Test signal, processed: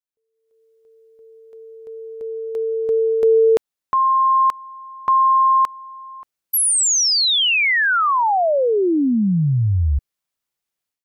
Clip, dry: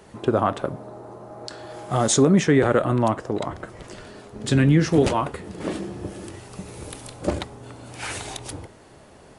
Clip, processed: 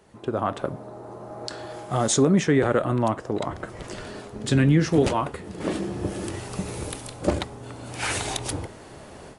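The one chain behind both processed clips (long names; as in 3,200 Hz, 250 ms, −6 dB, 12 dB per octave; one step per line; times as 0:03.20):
automatic gain control gain up to 15 dB
level −8 dB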